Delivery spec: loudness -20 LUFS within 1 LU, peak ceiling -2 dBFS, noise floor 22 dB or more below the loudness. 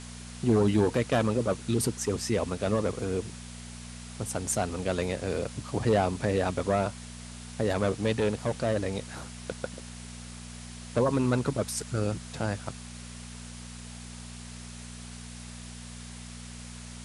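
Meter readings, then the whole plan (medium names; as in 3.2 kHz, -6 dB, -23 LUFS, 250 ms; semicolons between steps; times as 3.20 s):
hum 60 Hz; highest harmonic 240 Hz; hum level -41 dBFS; noise floor -43 dBFS; noise floor target -51 dBFS; loudness -29.0 LUFS; peak level -11.5 dBFS; loudness target -20.0 LUFS
-> de-hum 60 Hz, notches 4; noise print and reduce 8 dB; trim +9 dB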